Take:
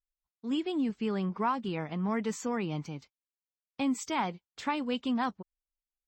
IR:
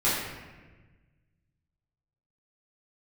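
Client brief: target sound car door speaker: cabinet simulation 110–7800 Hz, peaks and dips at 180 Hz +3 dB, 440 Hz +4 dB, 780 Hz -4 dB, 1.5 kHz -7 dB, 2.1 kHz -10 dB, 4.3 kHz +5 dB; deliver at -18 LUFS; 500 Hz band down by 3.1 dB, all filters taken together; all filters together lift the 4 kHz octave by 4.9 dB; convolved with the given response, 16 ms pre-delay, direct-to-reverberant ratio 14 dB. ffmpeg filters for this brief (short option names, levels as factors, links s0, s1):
-filter_complex "[0:a]equalizer=f=500:t=o:g=-6.5,equalizer=f=4000:t=o:g=6.5,asplit=2[s0][s1];[1:a]atrim=start_sample=2205,adelay=16[s2];[s1][s2]afir=irnorm=-1:irlink=0,volume=0.0422[s3];[s0][s3]amix=inputs=2:normalize=0,highpass=110,equalizer=f=180:t=q:w=4:g=3,equalizer=f=440:t=q:w=4:g=4,equalizer=f=780:t=q:w=4:g=-4,equalizer=f=1500:t=q:w=4:g=-7,equalizer=f=2100:t=q:w=4:g=-10,equalizer=f=4300:t=q:w=4:g=5,lowpass=f=7800:w=0.5412,lowpass=f=7800:w=1.3066,volume=5.96"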